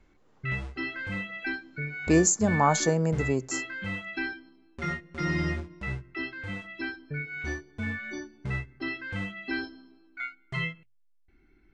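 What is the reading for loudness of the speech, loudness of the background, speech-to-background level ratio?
−25.0 LKFS, −34.0 LKFS, 9.0 dB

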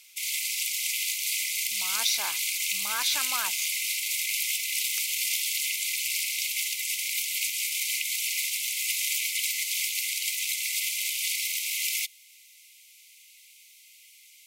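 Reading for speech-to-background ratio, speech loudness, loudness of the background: −6.0 dB, −32.5 LKFS, −26.5 LKFS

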